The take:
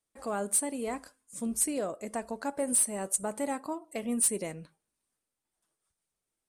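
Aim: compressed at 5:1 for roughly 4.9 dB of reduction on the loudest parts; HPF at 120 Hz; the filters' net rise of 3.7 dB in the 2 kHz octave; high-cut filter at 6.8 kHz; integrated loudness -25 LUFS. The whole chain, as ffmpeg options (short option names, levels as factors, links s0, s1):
-af "highpass=120,lowpass=6800,equalizer=f=2000:t=o:g=4.5,acompressor=threshold=0.0224:ratio=5,volume=4.47"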